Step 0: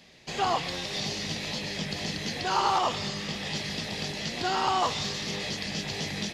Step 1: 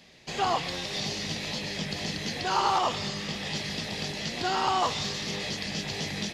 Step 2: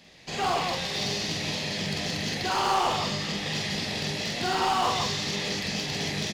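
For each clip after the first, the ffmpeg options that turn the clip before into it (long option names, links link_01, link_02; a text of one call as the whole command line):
ffmpeg -i in.wav -af anull out.wav
ffmpeg -i in.wav -filter_complex "[0:a]asoftclip=type=hard:threshold=-24.5dB,asplit=2[link_01][link_02];[link_02]aecho=0:1:46.65|174.9:0.794|0.631[link_03];[link_01][link_03]amix=inputs=2:normalize=0" out.wav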